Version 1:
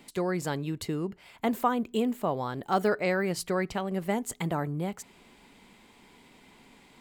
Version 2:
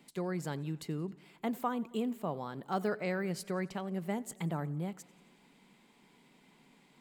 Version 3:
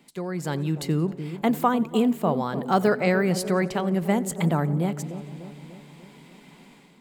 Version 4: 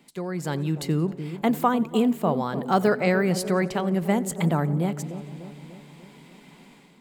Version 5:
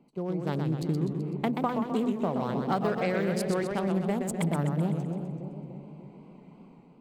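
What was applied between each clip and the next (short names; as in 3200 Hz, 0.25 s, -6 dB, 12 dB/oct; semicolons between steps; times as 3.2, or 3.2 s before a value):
resonant low shelf 120 Hz -7 dB, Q 3; warbling echo 90 ms, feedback 64%, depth 88 cents, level -22.5 dB; gain -8.5 dB
AGC gain up to 9 dB; dark delay 0.297 s, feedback 56%, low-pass 670 Hz, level -10 dB; gain +3.5 dB
nothing audible
Wiener smoothing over 25 samples; compressor, threshold -24 dBFS, peak gain reduction 9 dB; warbling echo 0.127 s, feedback 55%, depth 170 cents, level -5.5 dB; gain -1 dB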